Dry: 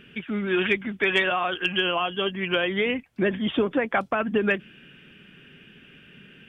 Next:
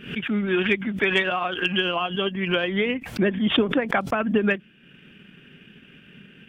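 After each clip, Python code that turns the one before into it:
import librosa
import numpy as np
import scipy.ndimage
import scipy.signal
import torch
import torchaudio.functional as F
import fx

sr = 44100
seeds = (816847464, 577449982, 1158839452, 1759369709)

y = fx.peak_eq(x, sr, hz=200.0, db=4.0, octaves=0.85)
y = fx.transient(y, sr, attack_db=1, sustain_db=-7)
y = fx.pre_swell(y, sr, db_per_s=110.0)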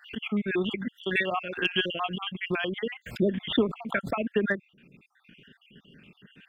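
y = fx.spec_dropout(x, sr, seeds[0], share_pct=57)
y = y * librosa.db_to_amplitude(-2.5)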